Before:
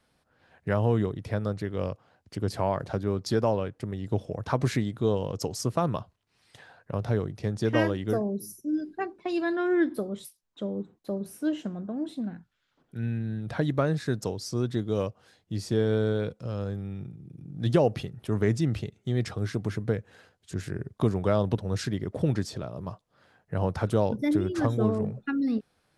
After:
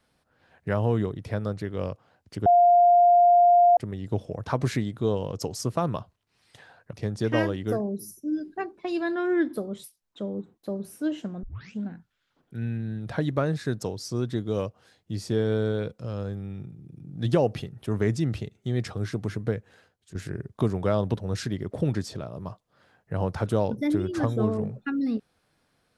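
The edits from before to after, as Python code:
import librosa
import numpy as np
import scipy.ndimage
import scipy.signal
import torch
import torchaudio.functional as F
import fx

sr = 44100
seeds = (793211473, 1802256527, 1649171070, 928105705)

y = fx.edit(x, sr, fx.bleep(start_s=2.46, length_s=1.31, hz=702.0, db=-13.5),
    fx.cut(start_s=6.93, length_s=0.41),
    fx.tape_start(start_s=11.84, length_s=0.42),
    fx.fade_out_to(start_s=19.94, length_s=0.62, floor_db=-10.0), tone=tone)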